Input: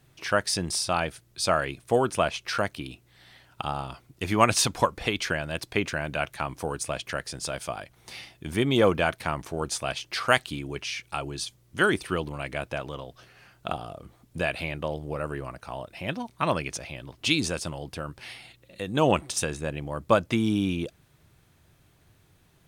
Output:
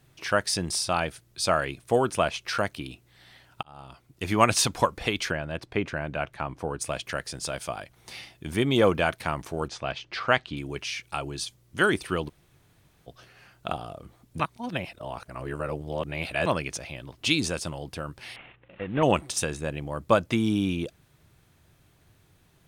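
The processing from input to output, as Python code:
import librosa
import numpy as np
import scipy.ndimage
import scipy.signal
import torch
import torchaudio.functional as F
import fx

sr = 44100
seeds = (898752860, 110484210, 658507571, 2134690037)

y = fx.lowpass(x, sr, hz=1700.0, slope=6, at=(5.3, 6.8), fade=0.02)
y = fx.air_absorb(y, sr, metres=160.0, at=(9.68, 10.57))
y = fx.cvsd(y, sr, bps=16000, at=(18.36, 19.03))
y = fx.edit(y, sr, fx.fade_in_span(start_s=3.63, length_s=0.68),
    fx.room_tone_fill(start_s=12.29, length_s=0.78, crossfade_s=0.02),
    fx.reverse_span(start_s=14.4, length_s=2.06), tone=tone)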